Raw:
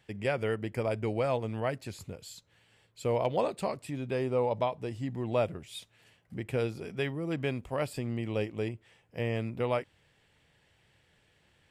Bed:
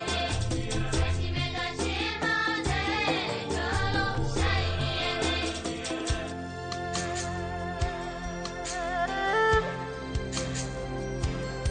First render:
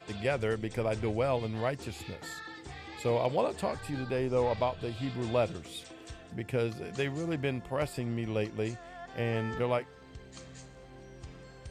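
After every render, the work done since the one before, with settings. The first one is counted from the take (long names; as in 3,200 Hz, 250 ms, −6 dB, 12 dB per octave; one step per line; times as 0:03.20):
mix in bed −17 dB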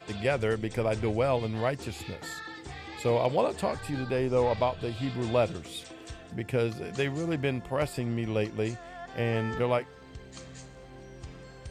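level +3 dB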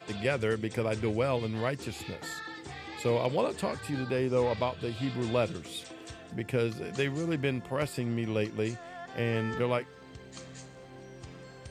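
high-pass filter 96 Hz
dynamic equaliser 730 Hz, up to −6 dB, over −42 dBFS, Q 1.9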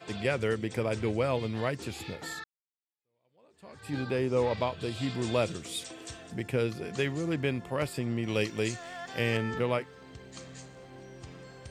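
0:02.44–0:03.94: fade in exponential
0:04.80–0:06.48: parametric band 8,100 Hz +7 dB 1.7 octaves
0:08.28–0:09.37: high-shelf EQ 2,100 Hz +10 dB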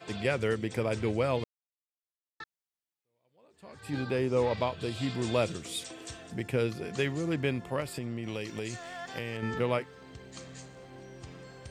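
0:01.44–0:02.40: silence
0:07.80–0:09.43: downward compressor, threshold −31 dBFS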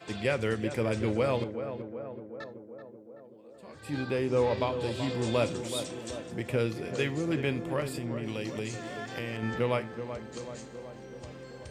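tape delay 380 ms, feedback 77%, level −7.5 dB, low-pass 1,200 Hz
reverb whose tail is shaped and stops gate 110 ms falling, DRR 12 dB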